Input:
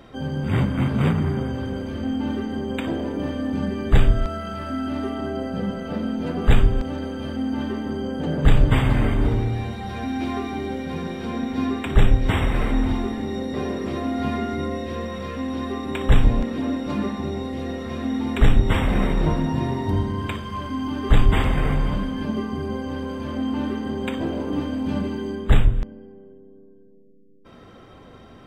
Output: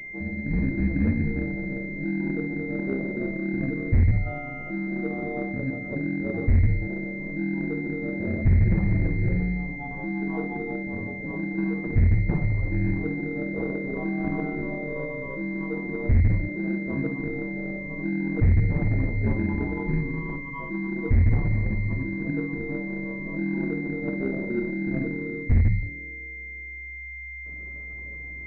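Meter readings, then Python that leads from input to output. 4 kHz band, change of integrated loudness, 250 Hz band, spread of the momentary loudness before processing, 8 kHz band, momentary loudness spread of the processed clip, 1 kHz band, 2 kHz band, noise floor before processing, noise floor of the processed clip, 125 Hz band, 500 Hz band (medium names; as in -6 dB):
under -25 dB, -3.0 dB, -3.0 dB, 9 LU, no reading, 10 LU, -11.5 dB, +2.0 dB, -46 dBFS, -38 dBFS, -1.0 dB, -4.5 dB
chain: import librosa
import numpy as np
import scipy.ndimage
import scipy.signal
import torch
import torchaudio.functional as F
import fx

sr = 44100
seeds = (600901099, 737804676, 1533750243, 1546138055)

p1 = fx.spec_expand(x, sr, power=1.8)
p2 = fx.backlash(p1, sr, play_db=-18.0)
p3 = p1 + F.gain(torch.from_numpy(p2), -10.5).numpy()
p4 = p3 * np.sin(2.0 * np.pi * 66.0 * np.arange(len(p3)) / sr)
p5 = p4 + fx.room_early_taps(p4, sr, ms=(45, 56), db=(-11.5, -9.5), dry=0)
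p6 = fx.dynamic_eq(p5, sr, hz=580.0, q=1.0, threshold_db=-41.0, ratio=4.0, max_db=6)
p7 = np.clip(p6, -10.0 ** (-11.0 / 20.0), 10.0 ** (-11.0 / 20.0))
p8 = fx.pwm(p7, sr, carrier_hz=2100.0)
y = F.gain(torch.from_numpy(p8), -3.0).numpy()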